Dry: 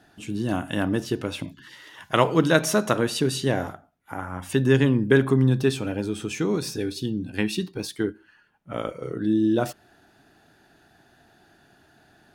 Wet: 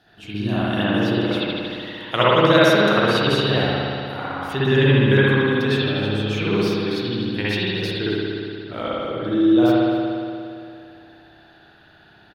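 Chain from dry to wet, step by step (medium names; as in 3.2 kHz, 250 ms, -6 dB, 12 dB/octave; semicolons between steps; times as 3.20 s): ten-band graphic EQ 250 Hz -5 dB, 4 kHz +9 dB, 8 kHz -11 dB; delay 262 ms -20 dB; spring tank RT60 2.5 s, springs 58 ms, chirp 25 ms, DRR -9.5 dB; trim -3 dB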